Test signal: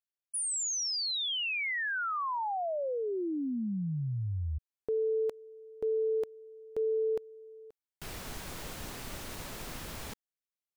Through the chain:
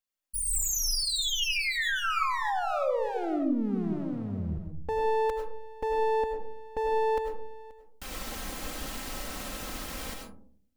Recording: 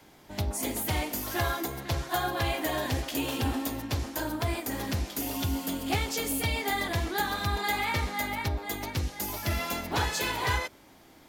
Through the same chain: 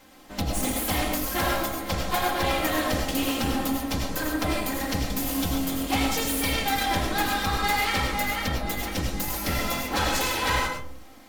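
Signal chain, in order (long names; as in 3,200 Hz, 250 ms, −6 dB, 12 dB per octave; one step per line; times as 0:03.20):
lower of the sound and its delayed copy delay 3.8 ms
comb and all-pass reverb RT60 0.55 s, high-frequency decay 0.3×, pre-delay 60 ms, DRR 2 dB
level +4 dB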